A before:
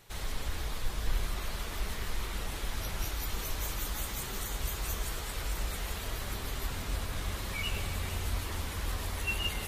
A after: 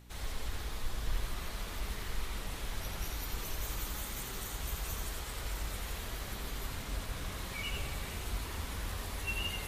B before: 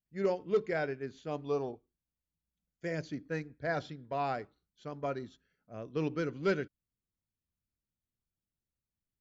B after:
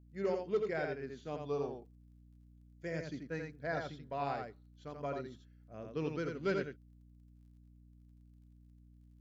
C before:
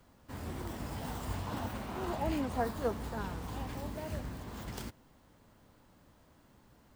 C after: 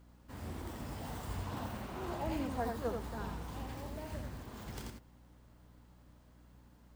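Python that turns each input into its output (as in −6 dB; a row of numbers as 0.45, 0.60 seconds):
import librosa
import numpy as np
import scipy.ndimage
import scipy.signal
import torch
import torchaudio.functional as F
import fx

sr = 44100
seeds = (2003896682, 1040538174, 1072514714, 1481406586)

y = fx.dmg_crackle(x, sr, seeds[0], per_s=24.0, level_db=-62.0)
y = y + 10.0 ** (-4.5 / 20.0) * np.pad(y, (int(85 * sr / 1000.0), 0))[:len(y)]
y = fx.add_hum(y, sr, base_hz=60, snr_db=19)
y = y * 10.0 ** (-4.5 / 20.0)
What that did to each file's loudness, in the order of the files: −3.5, −3.5, −3.0 LU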